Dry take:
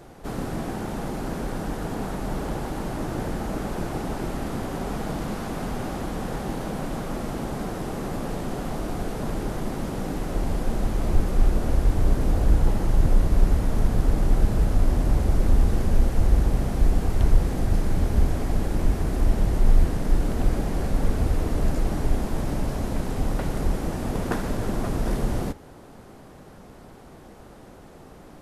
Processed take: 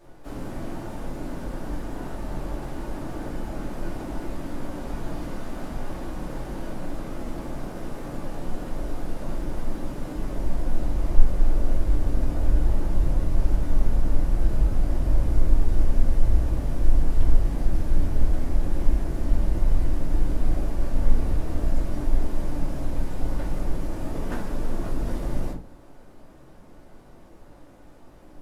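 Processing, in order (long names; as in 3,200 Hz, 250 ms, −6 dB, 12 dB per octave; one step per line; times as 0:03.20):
rectangular room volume 150 cubic metres, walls furnished, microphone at 2.6 metres
pitch-shifted copies added +5 semitones −15 dB, +12 semitones −17 dB
level −12 dB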